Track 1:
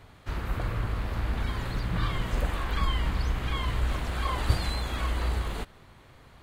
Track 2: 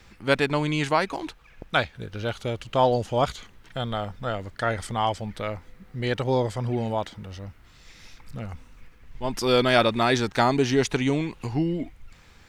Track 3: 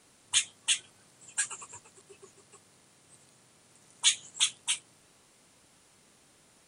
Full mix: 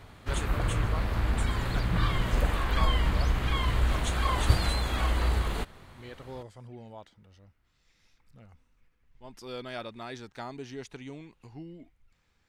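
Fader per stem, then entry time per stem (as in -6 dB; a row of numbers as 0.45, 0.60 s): +2.0, -19.0, -15.0 dB; 0.00, 0.00, 0.00 s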